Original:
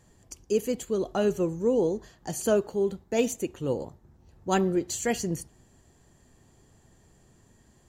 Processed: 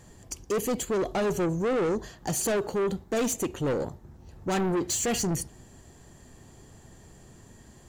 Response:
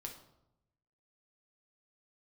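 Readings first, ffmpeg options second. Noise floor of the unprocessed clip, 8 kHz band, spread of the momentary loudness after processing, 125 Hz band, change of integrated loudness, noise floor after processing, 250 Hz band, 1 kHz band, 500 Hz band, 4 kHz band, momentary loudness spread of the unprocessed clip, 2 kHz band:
-61 dBFS, +5.0 dB, 7 LU, +2.0 dB, -0.5 dB, -53 dBFS, -0.5 dB, +1.5 dB, -1.5 dB, +3.0 dB, 11 LU, +2.0 dB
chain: -filter_complex "[0:a]asplit=2[a][b];[b]alimiter=limit=-20dB:level=0:latency=1,volume=-1dB[c];[a][c]amix=inputs=2:normalize=0,asoftclip=type=tanh:threshold=-26dB,volume=2.5dB"

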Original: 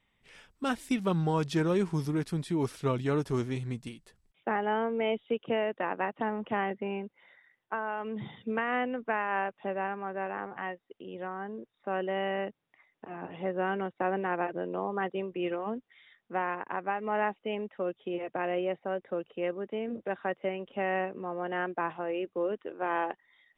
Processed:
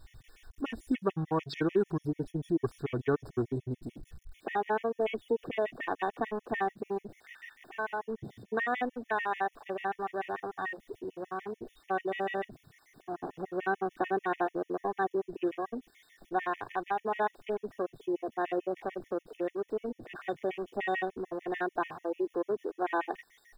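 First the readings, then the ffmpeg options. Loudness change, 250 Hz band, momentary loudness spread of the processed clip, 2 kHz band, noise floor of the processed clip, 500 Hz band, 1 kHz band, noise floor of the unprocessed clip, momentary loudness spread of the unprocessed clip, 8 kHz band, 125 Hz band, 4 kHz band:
-1.5 dB, -2.0 dB, 10 LU, -1.5 dB, -71 dBFS, -1.0 dB, -0.5 dB, -78 dBFS, 9 LU, n/a, -5.0 dB, -4.5 dB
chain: -af "aeval=exprs='val(0)+0.5*0.0112*sgn(val(0))':c=same,aecho=1:1:2.7:0.45,afwtdn=0.0126,afftfilt=real='re*gt(sin(2*PI*6.8*pts/sr)*(1-2*mod(floor(b*sr/1024/1800),2)),0)':imag='im*gt(sin(2*PI*6.8*pts/sr)*(1-2*mod(floor(b*sr/1024/1800),2)),0)':win_size=1024:overlap=0.75"

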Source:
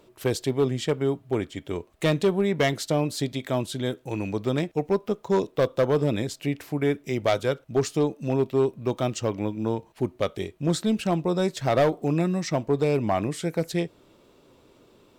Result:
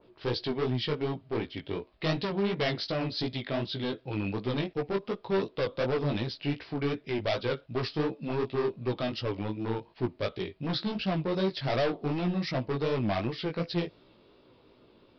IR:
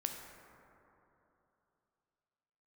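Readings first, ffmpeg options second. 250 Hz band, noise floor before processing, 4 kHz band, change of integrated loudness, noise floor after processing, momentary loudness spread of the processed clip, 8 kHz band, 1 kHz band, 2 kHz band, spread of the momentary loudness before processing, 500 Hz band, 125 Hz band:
-5.5 dB, -58 dBFS, 0.0 dB, -5.5 dB, -61 dBFS, 5 LU, under -20 dB, -5.5 dB, -3.0 dB, 7 LU, -6.5 dB, -5.0 dB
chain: -af "aresample=11025,asoftclip=type=hard:threshold=-22.5dB,aresample=44100,flanger=delay=15.5:depth=5.1:speed=2.7,adynamicequalizer=threshold=0.00398:dfrequency=2300:dqfactor=0.7:tfrequency=2300:tqfactor=0.7:attack=5:release=100:ratio=0.375:range=2.5:mode=boostabove:tftype=highshelf"

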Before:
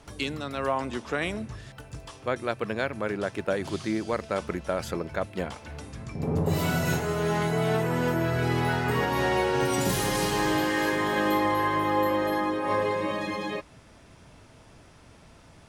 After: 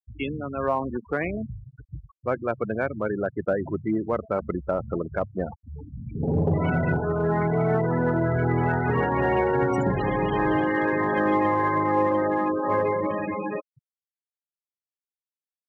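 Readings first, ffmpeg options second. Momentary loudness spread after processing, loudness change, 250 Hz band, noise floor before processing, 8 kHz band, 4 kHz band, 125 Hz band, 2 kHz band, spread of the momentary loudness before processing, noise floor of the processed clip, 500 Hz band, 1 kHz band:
11 LU, +2.5 dB, +3.5 dB, -53 dBFS, under -20 dB, under -10 dB, +3.5 dB, 0.0 dB, 10 LU, under -85 dBFS, +3.0 dB, +2.0 dB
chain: -filter_complex "[0:a]aemphasis=mode=reproduction:type=75fm,afftfilt=real='re*gte(hypot(re,im),0.0447)':imag='im*gte(hypot(re,im),0.0447)':win_size=1024:overlap=0.75,asplit=2[a][b];[b]volume=20dB,asoftclip=hard,volume=-20dB,volume=-9dB[c];[a][c]amix=inputs=2:normalize=0"

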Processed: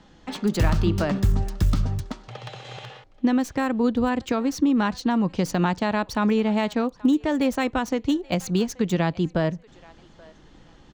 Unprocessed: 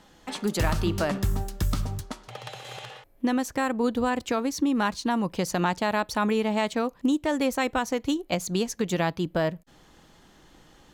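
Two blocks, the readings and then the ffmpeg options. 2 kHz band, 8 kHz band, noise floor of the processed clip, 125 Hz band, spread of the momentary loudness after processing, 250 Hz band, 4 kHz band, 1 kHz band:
0.0 dB, -2.5 dB, -52 dBFS, +5.5 dB, 15 LU, +4.5 dB, -0.5 dB, 0.0 dB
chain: -filter_complex "[0:a]acrossover=split=320|7200[a][b][c];[a]acontrast=50[d];[b]aecho=1:1:830|1660:0.075|0.0195[e];[c]acrusher=bits=4:dc=4:mix=0:aa=0.000001[f];[d][e][f]amix=inputs=3:normalize=0"

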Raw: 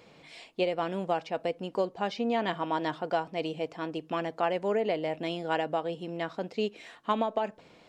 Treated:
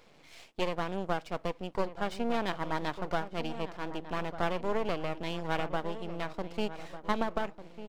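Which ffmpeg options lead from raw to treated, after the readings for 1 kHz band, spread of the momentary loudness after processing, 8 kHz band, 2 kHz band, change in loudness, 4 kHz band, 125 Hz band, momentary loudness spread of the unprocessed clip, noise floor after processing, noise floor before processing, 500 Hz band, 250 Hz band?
-3.0 dB, 6 LU, n/a, -0.5 dB, -3.0 dB, -2.0 dB, +1.5 dB, 7 LU, -58 dBFS, -57 dBFS, -4.5 dB, -2.5 dB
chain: -filter_complex "[0:a]aeval=exprs='max(val(0),0)':c=same,asplit=2[a][b];[b]adelay=1198,lowpass=f=1.5k:p=1,volume=-12dB,asplit=2[c][d];[d]adelay=1198,lowpass=f=1.5k:p=1,volume=0.42,asplit=2[e][f];[f]adelay=1198,lowpass=f=1.5k:p=1,volume=0.42,asplit=2[g][h];[h]adelay=1198,lowpass=f=1.5k:p=1,volume=0.42[i];[a][c][e][g][i]amix=inputs=5:normalize=0"

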